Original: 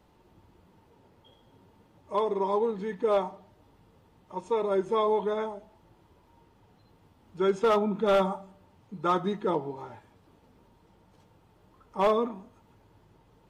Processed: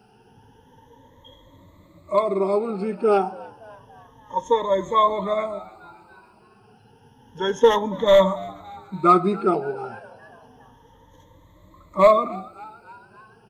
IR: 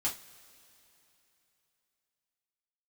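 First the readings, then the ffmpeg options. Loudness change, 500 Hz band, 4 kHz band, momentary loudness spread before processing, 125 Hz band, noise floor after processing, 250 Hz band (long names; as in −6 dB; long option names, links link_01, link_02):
+7.5 dB, +7.0 dB, +9.5 dB, 17 LU, +6.5 dB, −54 dBFS, +6.0 dB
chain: -filter_complex "[0:a]afftfilt=real='re*pow(10,20/40*sin(2*PI*(1.1*log(max(b,1)*sr/1024/100)/log(2)-(0.3)*(pts-256)/sr)))':imag='im*pow(10,20/40*sin(2*PI*(1.1*log(max(b,1)*sr/1024/100)/log(2)-(0.3)*(pts-256)/sr)))':win_size=1024:overlap=0.75,asplit=5[link_01][link_02][link_03][link_04][link_05];[link_02]adelay=284,afreqshift=110,volume=-22dB[link_06];[link_03]adelay=568,afreqshift=220,volume=-26.7dB[link_07];[link_04]adelay=852,afreqshift=330,volume=-31.5dB[link_08];[link_05]adelay=1136,afreqshift=440,volume=-36.2dB[link_09];[link_01][link_06][link_07][link_08][link_09]amix=inputs=5:normalize=0,volume=3.5dB"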